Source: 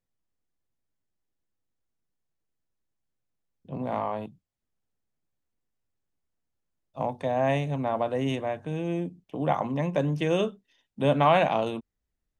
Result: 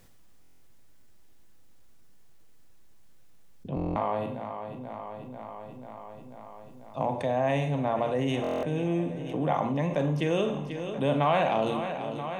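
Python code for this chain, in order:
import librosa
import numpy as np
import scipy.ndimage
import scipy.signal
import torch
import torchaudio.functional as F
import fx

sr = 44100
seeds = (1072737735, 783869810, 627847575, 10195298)

p1 = x + fx.echo_feedback(x, sr, ms=490, feedback_pct=59, wet_db=-17, dry=0)
p2 = fx.rev_schroeder(p1, sr, rt60_s=0.49, comb_ms=32, drr_db=8.5)
p3 = fx.buffer_glitch(p2, sr, at_s=(0.41, 3.75, 8.42), block=1024, repeats=8)
p4 = fx.env_flatten(p3, sr, amount_pct=50)
y = F.gain(torch.from_numpy(p4), -5.0).numpy()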